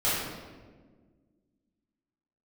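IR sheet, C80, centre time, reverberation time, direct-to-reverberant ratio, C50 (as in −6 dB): 2.0 dB, 92 ms, 1.5 s, −12.0 dB, −1.5 dB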